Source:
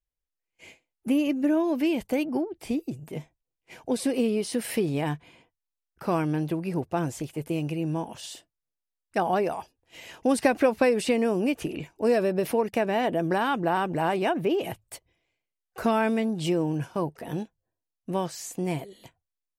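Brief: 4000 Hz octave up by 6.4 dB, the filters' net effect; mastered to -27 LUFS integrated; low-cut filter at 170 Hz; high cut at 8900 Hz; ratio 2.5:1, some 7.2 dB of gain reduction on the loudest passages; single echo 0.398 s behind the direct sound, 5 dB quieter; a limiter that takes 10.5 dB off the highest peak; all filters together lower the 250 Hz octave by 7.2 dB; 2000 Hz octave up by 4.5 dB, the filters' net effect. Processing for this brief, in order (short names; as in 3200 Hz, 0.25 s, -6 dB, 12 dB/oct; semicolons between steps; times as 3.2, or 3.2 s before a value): HPF 170 Hz; LPF 8900 Hz; bell 250 Hz -8.5 dB; bell 2000 Hz +4 dB; bell 4000 Hz +7.5 dB; compressor 2.5:1, threshold -28 dBFS; limiter -24 dBFS; echo 0.398 s -5 dB; gain +7 dB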